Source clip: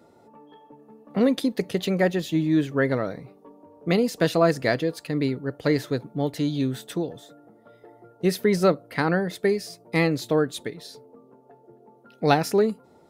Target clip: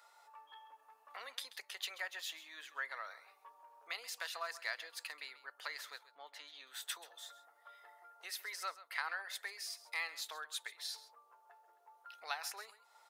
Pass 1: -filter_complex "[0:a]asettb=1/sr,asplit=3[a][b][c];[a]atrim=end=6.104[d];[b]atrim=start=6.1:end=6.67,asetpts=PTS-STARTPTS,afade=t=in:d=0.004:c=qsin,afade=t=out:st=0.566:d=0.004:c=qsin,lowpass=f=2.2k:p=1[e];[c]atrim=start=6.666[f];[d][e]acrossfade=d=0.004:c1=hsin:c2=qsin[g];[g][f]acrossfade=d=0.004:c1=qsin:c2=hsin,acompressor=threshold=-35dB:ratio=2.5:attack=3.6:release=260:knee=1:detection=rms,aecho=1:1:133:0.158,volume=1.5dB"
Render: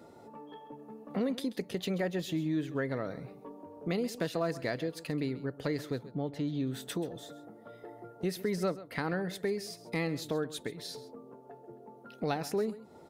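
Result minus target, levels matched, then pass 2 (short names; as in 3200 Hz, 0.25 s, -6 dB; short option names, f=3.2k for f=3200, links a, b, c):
1000 Hz band -4.0 dB
-filter_complex "[0:a]asettb=1/sr,asplit=3[a][b][c];[a]atrim=end=6.104[d];[b]atrim=start=6.1:end=6.67,asetpts=PTS-STARTPTS,afade=t=in:d=0.004:c=qsin,afade=t=out:st=0.566:d=0.004:c=qsin,lowpass=f=2.2k:p=1[e];[c]atrim=start=6.666[f];[d][e]acrossfade=d=0.004:c1=hsin:c2=qsin[g];[g][f]acrossfade=d=0.004:c1=qsin:c2=hsin,acompressor=threshold=-35dB:ratio=2.5:attack=3.6:release=260:knee=1:detection=rms,highpass=f=1k:w=0.5412,highpass=f=1k:w=1.3066,aecho=1:1:133:0.158,volume=1.5dB"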